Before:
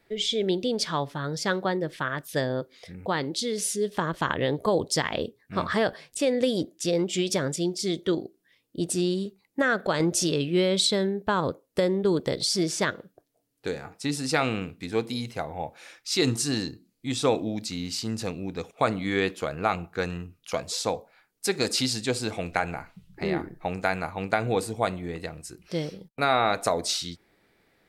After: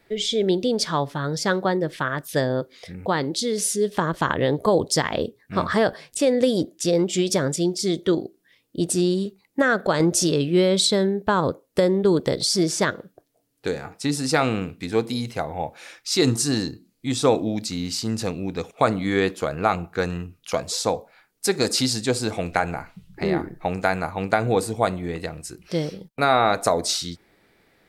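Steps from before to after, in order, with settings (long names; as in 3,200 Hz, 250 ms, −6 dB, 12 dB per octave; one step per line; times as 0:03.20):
dynamic equaliser 2,700 Hz, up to −5 dB, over −42 dBFS, Q 1.3
level +5 dB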